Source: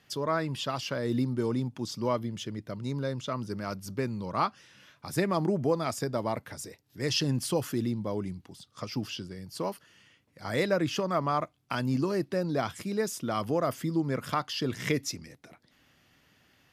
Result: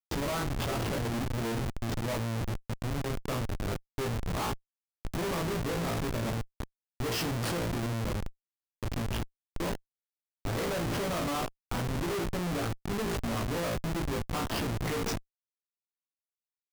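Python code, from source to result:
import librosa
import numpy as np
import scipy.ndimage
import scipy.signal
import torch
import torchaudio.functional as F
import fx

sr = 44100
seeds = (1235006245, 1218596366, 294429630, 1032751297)

y = fx.room_flutter(x, sr, wall_m=3.0, rt60_s=0.39)
y = fx.schmitt(y, sr, flips_db=-28.5)
y = y * 10.0 ** (-2.5 / 20.0)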